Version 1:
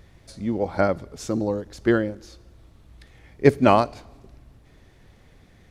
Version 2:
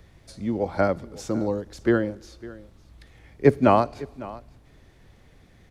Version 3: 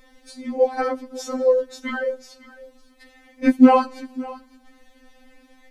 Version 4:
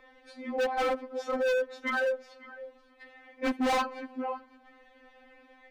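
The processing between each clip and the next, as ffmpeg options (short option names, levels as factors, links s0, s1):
-filter_complex "[0:a]acrossover=split=200|490|2000[s0][s1][s2][s3];[s3]alimiter=level_in=1.68:limit=0.0631:level=0:latency=1:release=202,volume=0.596[s4];[s0][s1][s2][s4]amix=inputs=4:normalize=0,aecho=1:1:554:0.112,volume=0.891"
-af "afftfilt=real='re*3.46*eq(mod(b,12),0)':imag='im*3.46*eq(mod(b,12),0)':win_size=2048:overlap=0.75,volume=2"
-filter_complex "[0:a]acrossover=split=330 3100:gain=0.141 1 0.0794[s0][s1][s2];[s0][s1][s2]amix=inputs=3:normalize=0,volume=20,asoftclip=hard,volume=0.0501,volume=1.12"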